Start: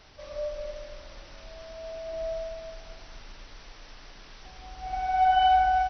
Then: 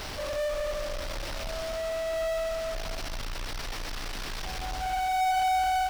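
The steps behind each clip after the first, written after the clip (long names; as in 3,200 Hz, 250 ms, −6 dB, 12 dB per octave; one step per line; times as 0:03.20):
power curve on the samples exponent 0.35
level −8.5 dB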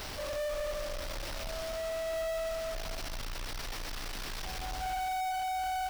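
high-shelf EQ 10,000 Hz +7 dB
brickwall limiter −27 dBFS, peak gain reduction 5 dB
level −4 dB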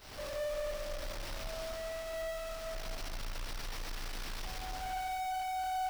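on a send: delay that swaps between a low-pass and a high-pass 111 ms, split 2,400 Hz, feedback 60%, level −6.5 dB
on the sum: noise gate −41 dBFS, range −14 dB
level −4 dB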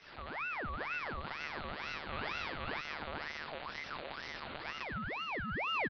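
single-tap delay 496 ms −4 dB
one-pitch LPC vocoder at 8 kHz 150 Hz
ring modulator whose carrier an LFO sweeps 1,300 Hz, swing 60%, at 2.1 Hz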